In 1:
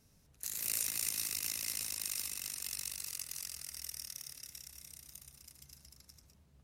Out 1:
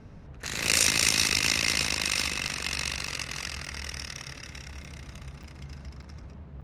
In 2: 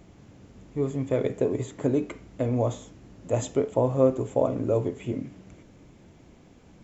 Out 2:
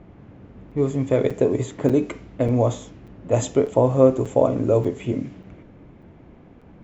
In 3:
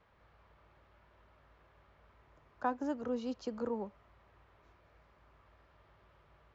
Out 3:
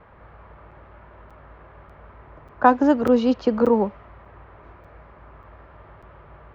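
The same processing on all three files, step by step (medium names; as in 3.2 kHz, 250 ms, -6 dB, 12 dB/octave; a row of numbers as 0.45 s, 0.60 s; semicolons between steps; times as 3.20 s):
level-controlled noise filter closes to 1.7 kHz, open at -24.5 dBFS; crackling interface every 0.59 s, samples 256, zero, from 0.71 s; peak normalisation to -2 dBFS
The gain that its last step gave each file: +21.5 dB, +6.0 dB, +19.0 dB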